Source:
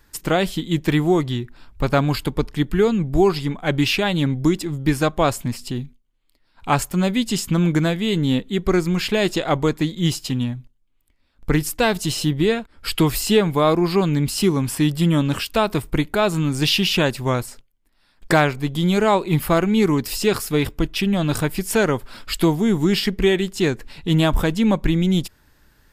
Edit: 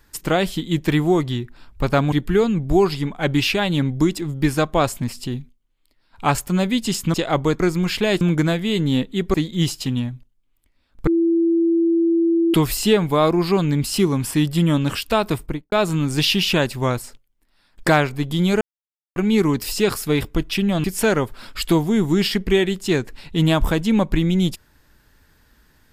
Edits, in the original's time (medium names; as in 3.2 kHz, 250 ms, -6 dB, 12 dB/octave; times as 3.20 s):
2.12–2.56 s: delete
7.58–8.71 s: swap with 9.32–9.78 s
11.51–12.98 s: bleep 334 Hz -14 dBFS
15.79–16.16 s: studio fade out
19.05–19.60 s: mute
21.28–21.56 s: delete